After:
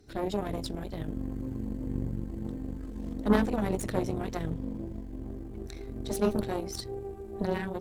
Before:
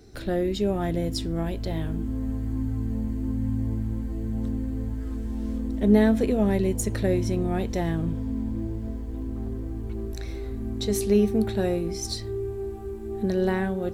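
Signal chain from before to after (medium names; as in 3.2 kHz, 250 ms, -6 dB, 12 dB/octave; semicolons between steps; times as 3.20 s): Chebyshev shaper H 3 -15 dB, 6 -19 dB, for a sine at -7 dBFS; granular stretch 0.56×, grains 78 ms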